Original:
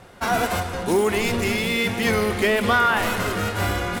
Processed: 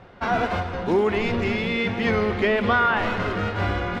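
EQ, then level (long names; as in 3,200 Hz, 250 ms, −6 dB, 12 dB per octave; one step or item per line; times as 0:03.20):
high-frequency loss of the air 230 metres
0.0 dB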